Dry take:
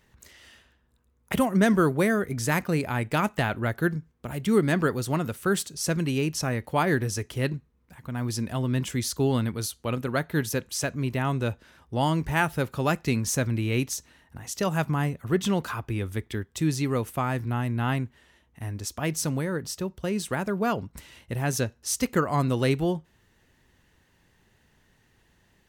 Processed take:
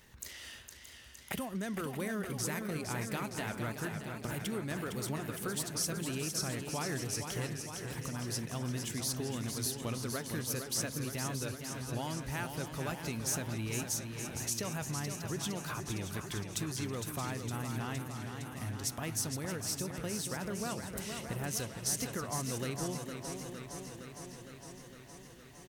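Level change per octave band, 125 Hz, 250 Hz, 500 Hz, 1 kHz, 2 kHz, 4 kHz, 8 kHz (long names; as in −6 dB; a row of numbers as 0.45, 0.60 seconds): −10.5, −12.0, −12.5, −12.0, −10.5, −4.5, −2.0 decibels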